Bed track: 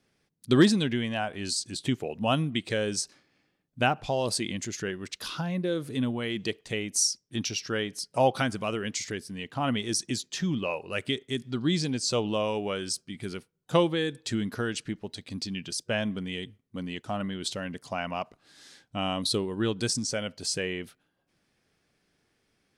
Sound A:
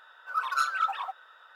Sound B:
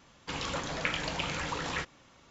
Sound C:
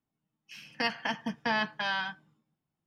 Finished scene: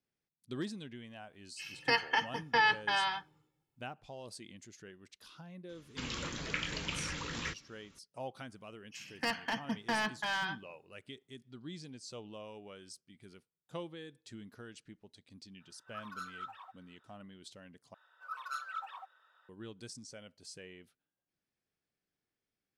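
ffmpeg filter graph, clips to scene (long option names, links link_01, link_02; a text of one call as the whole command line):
ffmpeg -i bed.wav -i cue0.wav -i cue1.wav -i cue2.wav -filter_complex "[3:a]asplit=2[link_01][link_02];[1:a]asplit=2[link_03][link_04];[0:a]volume=-19.5dB[link_05];[link_01]aecho=1:1:2.3:0.9[link_06];[2:a]equalizer=frequency=740:width_type=o:width=1.1:gain=-11.5[link_07];[link_02]volume=24.5dB,asoftclip=hard,volume=-24.5dB[link_08];[link_05]asplit=2[link_09][link_10];[link_09]atrim=end=17.944[link_11];[link_04]atrim=end=1.55,asetpts=PTS-STARTPTS,volume=-13.5dB[link_12];[link_10]atrim=start=19.486[link_13];[link_06]atrim=end=2.86,asetpts=PTS-STARTPTS,volume=-1.5dB,afade=type=in:duration=0.004:curve=hsin,afade=type=out:start_time=2.856:duration=0.004:curve=hsin,adelay=1080[link_14];[link_07]atrim=end=2.3,asetpts=PTS-STARTPTS,volume=-3dB,afade=type=in:duration=0.004:curve=hsin,afade=type=out:start_time=2.296:duration=0.004:curve=hsin,adelay=250929S[link_15];[link_08]atrim=end=2.86,asetpts=PTS-STARTPTS,volume=-2.5dB,afade=type=in:duration=0.004:curve=hsin,afade=type=out:start_time=2.856:duration=0.004:curve=hsin,adelay=8430[link_16];[link_03]atrim=end=1.55,asetpts=PTS-STARTPTS,volume=-17.5dB,afade=type=in:duration=0.004:curve=hsin,afade=type=out:start_time=1.546:duration=0.004:curve=hsin,adelay=15600[link_17];[link_11][link_12]acrossfade=duration=0.004:curve1=hsin:curve2=hsin[link_18];[link_18][link_13]acrossfade=duration=0.004:curve1=hsin:curve2=hsin[link_19];[link_19][link_14][link_15][link_16][link_17]amix=inputs=5:normalize=0" out.wav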